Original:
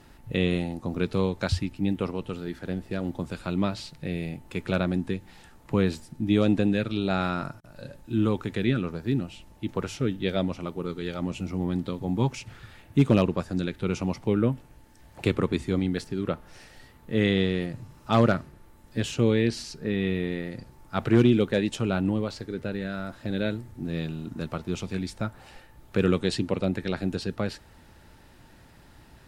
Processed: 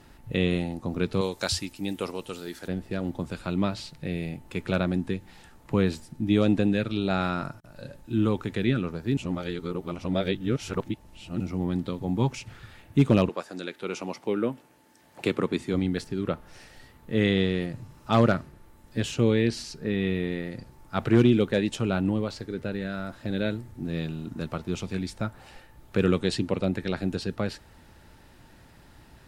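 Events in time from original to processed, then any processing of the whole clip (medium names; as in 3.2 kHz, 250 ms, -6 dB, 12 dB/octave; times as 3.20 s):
1.21–2.68 s: tone controls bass -10 dB, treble +12 dB
9.17–11.40 s: reverse
13.28–15.73 s: high-pass 470 Hz -> 150 Hz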